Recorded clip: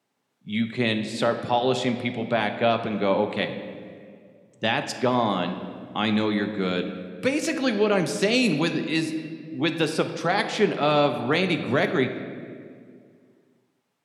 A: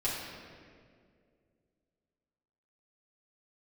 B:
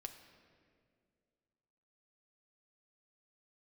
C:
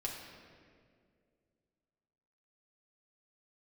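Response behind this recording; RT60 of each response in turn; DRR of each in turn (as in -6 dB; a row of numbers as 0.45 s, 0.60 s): B; 2.2 s, 2.2 s, 2.2 s; -9.0 dB, 6.0 dB, -2.0 dB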